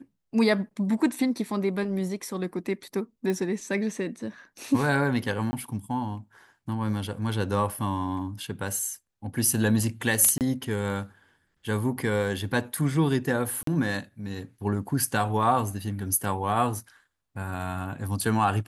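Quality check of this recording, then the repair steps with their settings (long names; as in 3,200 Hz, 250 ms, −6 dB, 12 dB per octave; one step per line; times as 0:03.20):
0:03.30: click −18 dBFS
0:05.51–0:05.53: drop-out 20 ms
0:10.38–0:10.41: drop-out 28 ms
0:13.63–0:13.67: drop-out 43 ms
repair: click removal
repair the gap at 0:05.51, 20 ms
repair the gap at 0:10.38, 28 ms
repair the gap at 0:13.63, 43 ms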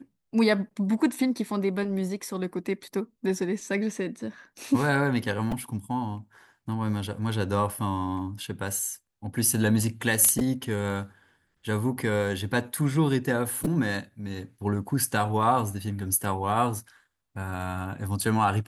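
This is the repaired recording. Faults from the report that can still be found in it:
none of them is left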